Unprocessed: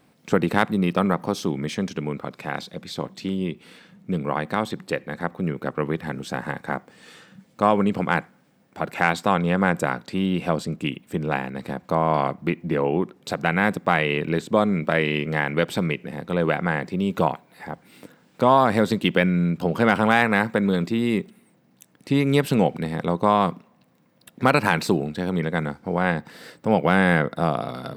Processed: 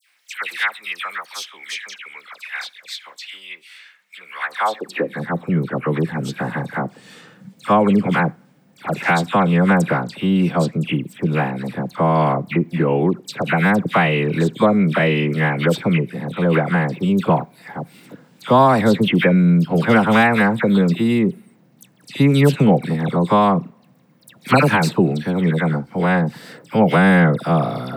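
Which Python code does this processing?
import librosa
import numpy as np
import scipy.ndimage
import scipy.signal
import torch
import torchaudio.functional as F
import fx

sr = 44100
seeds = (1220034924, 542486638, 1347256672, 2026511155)

y = fx.filter_sweep_highpass(x, sr, from_hz=2000.0, to_hz=130.0, start_s=4.31, end_s=5.12, q=1.8)
y = fx.dispersion(y, sr, late='lows', ms=92.0, hz=1800.0)
y = F.gain(torch.from_numpy(y), 3.5).numpy()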